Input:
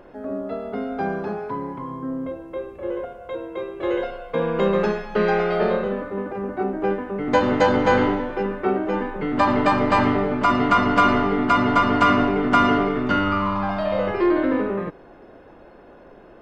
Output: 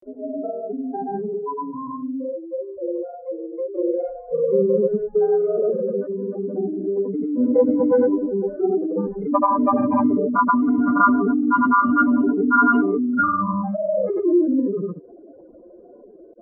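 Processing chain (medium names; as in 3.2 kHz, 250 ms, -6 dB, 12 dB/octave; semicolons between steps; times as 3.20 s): spectral contrast enhancement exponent 3.4; comb of notches 850 Hz; granulator, pitch spread up and down by 0 st; trim +3.5 dB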